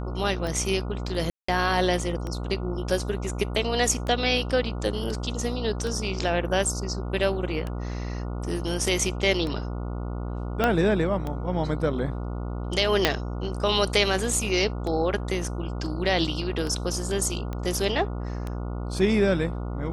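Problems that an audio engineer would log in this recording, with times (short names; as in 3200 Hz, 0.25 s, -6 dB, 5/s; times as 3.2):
buzz 60 Hz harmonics 24 -31 dBFS
tick 33 1/3 rpm -19 dBFS
1.3–1.48 gap 0.184 s
10.64 pop -9 dBFS
13.05 pop -4 dBFS
17.53 pop -20 dBFS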